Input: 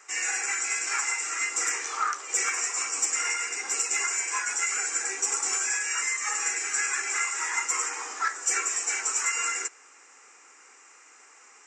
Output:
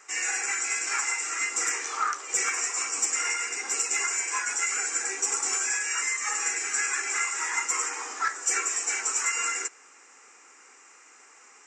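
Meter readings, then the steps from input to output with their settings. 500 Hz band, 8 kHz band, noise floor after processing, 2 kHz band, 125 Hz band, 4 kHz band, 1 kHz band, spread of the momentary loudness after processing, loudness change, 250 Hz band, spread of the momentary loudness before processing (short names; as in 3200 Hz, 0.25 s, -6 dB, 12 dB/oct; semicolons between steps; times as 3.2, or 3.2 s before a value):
+1.0 dB, 0.0 dB, -54 dBFS, 0.0 dB, n/a, 0.0 dB, 0.0 dB, 3 LU, 0.0 dB, +2.0 dB, 3 LU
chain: bell 100 Hz +9.5 dB 1.9 oct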